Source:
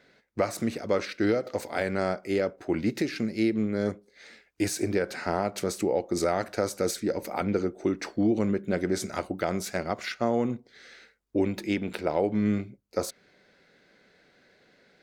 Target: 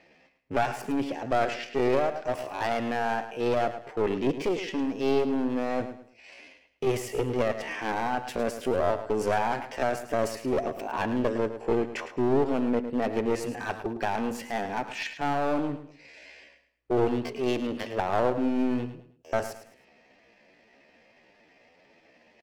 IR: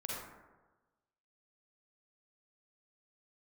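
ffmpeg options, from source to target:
-af "bass=frequency=250:gain=-1,treble=frequency=4000:gain=-13,atempo=0.67,aeval=exprs='clip(val(0),-1,0.0355)':channel_layout=same,asetrate=53981,aresample=44100,atempo=0.816958,aecho=1:1:107|214|321:0.266|0.0825|0.0256,volume=2.5dB"

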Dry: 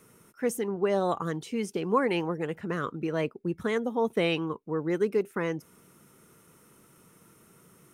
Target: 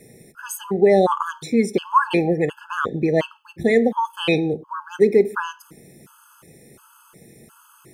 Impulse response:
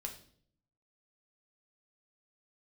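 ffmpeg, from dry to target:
-filter_complex "[0:a]asplit=2[link_01][link_02];[1:a]atrim=start_sample=2205,afade=type=out:start_time=0.25:duration=0.01,atrim=end_sample=11466,highshelf=frequency=7000:gain=-6[link_03];[link_02][link_03]afir=irnorm=-1:irlink=0,volume=-4.5dB[link_04];[link_01][link_04]amix=inputs=2:normalize=0,afftfilt=real='re*gt(sin(2*PI*1.4*pts/sr)*(1-2*mod(floor(b*sr/1024/860),2)),0)':imag='im*gt(sin(2*PI*1.4*pts/sr)*(1-2*mod(floor(b*sr/1024/860),2)),0)':win_size=1024:overlap=0.75,volume=9dB"

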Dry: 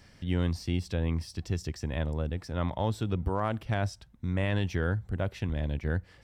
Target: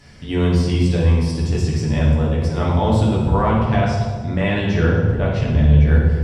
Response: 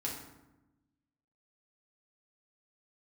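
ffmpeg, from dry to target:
-filter_complex "[0:a]asettb=1/sr,asplit=3[link_01][link_02][link_03];[link_01]atrim=end=3.264[link_04];[link_02]atrim=start=3.26:end=5.85,asetpts=PTS-STARTPTS,afade=type=in:duration=0.004:curve=qsin,afade=type=out:start_time=2.586:duration=0.004:curve=qsin,lowpass=6400[link_05];[link_03]atrim=start=5.846[link_06];[link_04][link_05]acrossfade=duration=0.004:curve1=hsin:curve2=qsin[link_07];[link_07][link_06]acrossfade=duration=0.004:curve1=qsin:curve2=hsin[link_08];[1:a]atrim=start_sample=2205,asetrate=22491,aresample=44100[link_09];[link_08][link_09]afir=irnorm=-1:irlink=0,volume=5.5dB"

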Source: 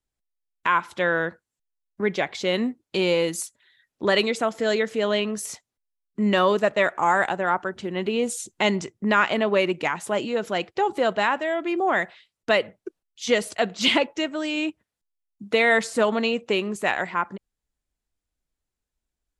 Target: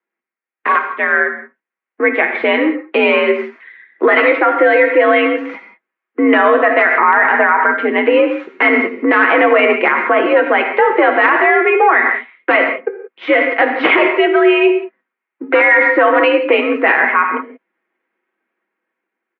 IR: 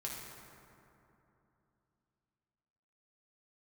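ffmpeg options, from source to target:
-filter_complex "[0:a]aeval=exprs='if(lt(val(0),0),0.708*val(0),val(0))':channel_layout=same,equalizer=frequency=560:width=0.62:gain=-10.5,aecho=1:1:6.7:0.48,asplit=2[link_01][link_02];[link_02]acompressor=threshold=-36dB:ratio=20,volume=0.5dB[link_03];[link_01][link_03]amix=inputs=2:normalize=0,aeval=exprs='(mod(4.22*val(0)+1,2)-1)/4.22':channel_layout=same,dynaudnorm=framelen=840:gausssize=5:maxgain=11.5dB,asplit=2[link_04][link_05];[1:a]atrim=start_sample=2205,afade=type=out:start_time=0.24:duration=0.01,atrim=end_sample=11025,highshelf=frequency=4200:gain=10.5[link_06];[link_05][link_06]afir=irnorm=-1:irlink=0,volume=0dB[link_07];[link_04][link_07]amix=inputs=2:normalize=0,highpass=frequency=250:width_type=q:width=0.5412,highpass=frequency=250:width_type=q:width=1.307,lowpass=frequency=2100:width_type=q:width=0.5176,lowpass=frequency=2100:width_type=q:width=0.7071,lowpass=frequency=2100:width_type=q:width=1.932,afreqshift=63,alimiter=level_in=8dB:limit=-1dB:release=50:level=0:latency=1,volume=-1dB"

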